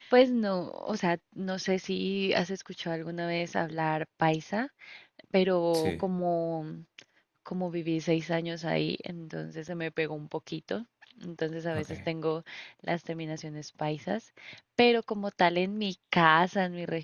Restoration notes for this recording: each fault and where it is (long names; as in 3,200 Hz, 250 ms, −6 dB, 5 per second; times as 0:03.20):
0:09.68–0:09.69: drop-out 5.4 ms